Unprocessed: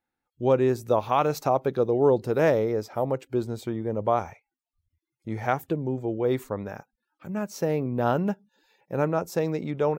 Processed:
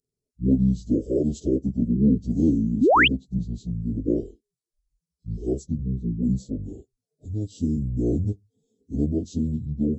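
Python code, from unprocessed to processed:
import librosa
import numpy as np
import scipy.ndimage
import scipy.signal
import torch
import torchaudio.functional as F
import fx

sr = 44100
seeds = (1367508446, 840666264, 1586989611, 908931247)

y = fx.pitch_bins(x, sr, semitones=-12.0)
y = scipy.signal.sosfilt(scipy.signal.cheby2(4, 60, [1000.0, 2100.0], 'bandstop', fs=sr, output='sos'), y)
y = fx.spec_paint(y, sr, seeds[0], shape='rise', start_s=2.81, length_s=0.27, low_hz=210.0, high_hz=3400.0, level_db=-18.0)
y = y * 10.0 ** (2.0 / 20.0)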